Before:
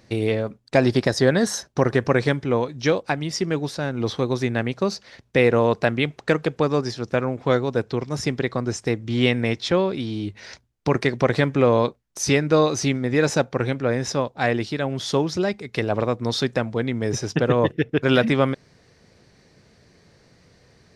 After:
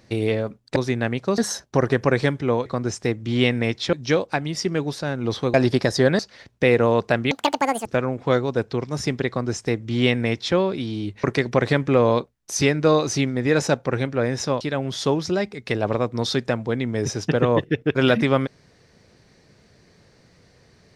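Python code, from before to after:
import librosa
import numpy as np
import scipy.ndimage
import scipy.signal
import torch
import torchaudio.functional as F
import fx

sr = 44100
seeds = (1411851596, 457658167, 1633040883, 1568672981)

y = fx.edit(x, sr, fx.swap(start_s=0.76, length_s=0.65, other_s=4.3, other_length_s=0.62),
    fx.speed_span(start_s=6.04, length_s=1.01, speed=1.85),
    fx.duplicate(start_s=8.48, length_s=1.27, to_s=2.69),
    fx.cut(start_s=10.43, length_s=0.48),
    fx.cut(start_s=14.28, length_s=0.4), tone=tone)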